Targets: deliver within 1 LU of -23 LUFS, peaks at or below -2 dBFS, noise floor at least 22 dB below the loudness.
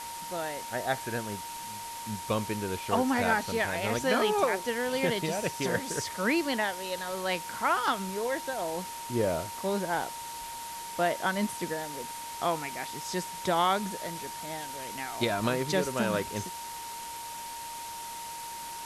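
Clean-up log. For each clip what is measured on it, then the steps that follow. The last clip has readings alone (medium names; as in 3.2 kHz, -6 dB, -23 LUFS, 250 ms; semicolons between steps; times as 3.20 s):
steady tone 930 Hz; tone level -39 dBFS; noise floor -40 dBFS; noise floor target -53 dBFS; loudness -31.0 LUFS; peak level -12.5 dBFS; loudness target -23.0 LUFS
-> band-stop 930 Hz, Q 30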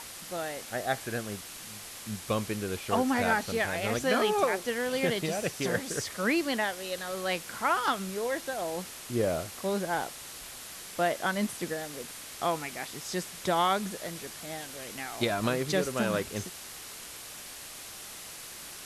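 steady tone not found; noise floor -44 dBFS; noise floor target -54 dBFS
-> noise reduction 10 dB, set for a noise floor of -44 dBFS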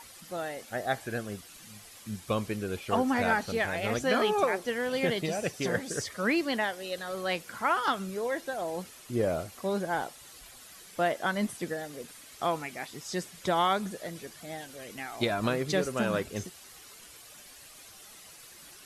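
noise floor -51 dBFS; noise floor target -53 dBFS
-> noise reduction 6 dB, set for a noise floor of -51 dBFS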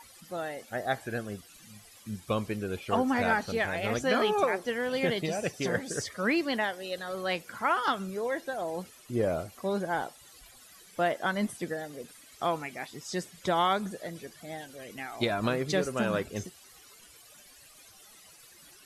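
noise floor -55 dBFS; loudness -31.0 LUFS; peak level -13.5 dBFS; loudness target -23.0 LUFS
-> trim +8 dB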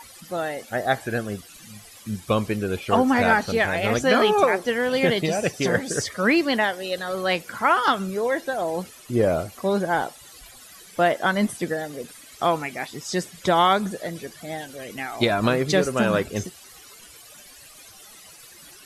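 loudness -23.0 LUFS; peak level -5.5 dBFS; noise floor -47 dBFS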